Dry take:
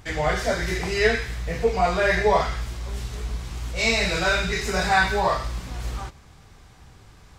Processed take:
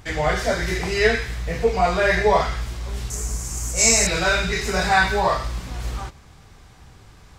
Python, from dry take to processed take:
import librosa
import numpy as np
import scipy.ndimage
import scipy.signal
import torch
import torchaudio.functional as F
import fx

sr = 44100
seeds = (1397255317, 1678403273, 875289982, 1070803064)

y = fx.high_shelf_res(x, sr, hz=5100.0, db=11.5, q=3.0, at=(3.1, 4.07))
y = y * 10.0 ** (2.0 / 20.0)